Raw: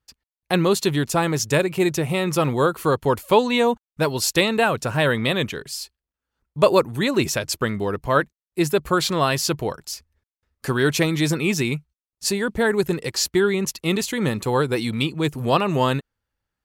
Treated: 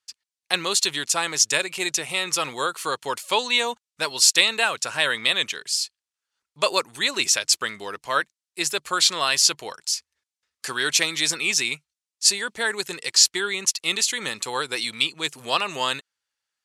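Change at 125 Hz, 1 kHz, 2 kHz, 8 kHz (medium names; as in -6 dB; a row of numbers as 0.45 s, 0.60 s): -20.5 dB, -4.0 dB, +1.5 dB, +7.5 dB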